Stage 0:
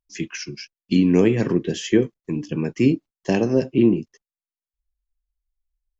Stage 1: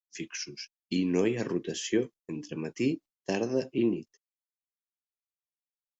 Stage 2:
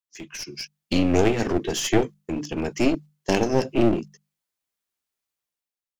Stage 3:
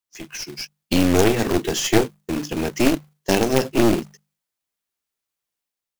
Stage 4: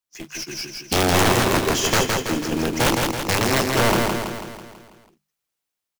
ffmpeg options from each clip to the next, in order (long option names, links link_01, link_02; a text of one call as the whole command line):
ffmpeg -i in.wav -af "agate=range=-33dB:threshold=-36dB:ratio=3:detection=peak,bass=frequency=250:gain=-7,treble=frequency=4000:gain=6,volume=-8dB" out.wav
ffmpeg -i in.wav -af "bandreject=frequency=50:width_type=h:width=6,bandreject=frequency=100:width_type=h:width=6,bandreject=frequency=150:width_type=h:width=6,bandreject=frequency=200:width_type=h:width=6,aeval=exprs='clip(val(0),-1,0.015)':channel_layout=same,dynaudnorm=framelen=100:gausssize=11:maxgain=11dB" out.wav
ffmpeg -i in.wav -af "acrusher=bits=2:mode=log:mix=0:aa=0.000001,volume=2.5dB" out.wav
ffmpeg -i in.wav -filter_complex "[0:a]aeval=exprs='(mod(3.16*val(0)+1,2)-1)/3.16':channel_layout=same,asplit=2[link_01][link_02];[link_02]aecho=0:1:164|328|492|656|820|984|1148:0.668|0.361|0.195|0.105|0.0568|0.0307|0.0166[link_03];[link_01][link_03]amix=inputs=2:normalize=0" out.wav